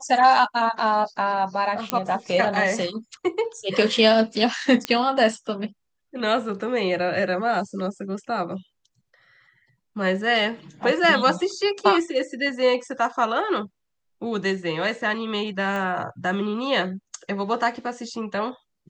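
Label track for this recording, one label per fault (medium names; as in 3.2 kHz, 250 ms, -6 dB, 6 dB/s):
1.900000	1.900000	pop -6 dBFS
4.850000	4.850000	pop -9 dBFS
15.760000	15.760000	pop -18 dBFS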